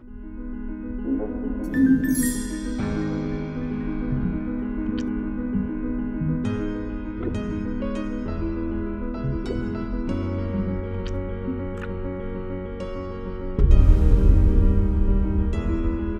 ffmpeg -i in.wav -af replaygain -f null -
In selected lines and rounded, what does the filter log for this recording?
track_gain = +10.0 dB
track_peak = 0.448